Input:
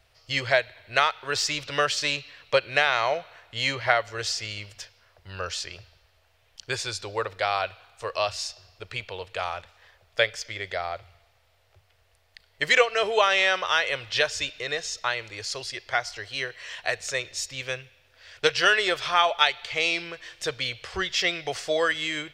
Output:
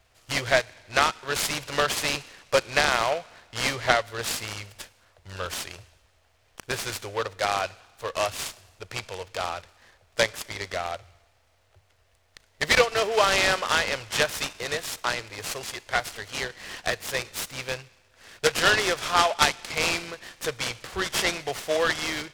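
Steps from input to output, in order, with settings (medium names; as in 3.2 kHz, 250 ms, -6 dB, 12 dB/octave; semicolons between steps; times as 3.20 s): delay time shaken by noise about 1.9 kHz, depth 0.05 ms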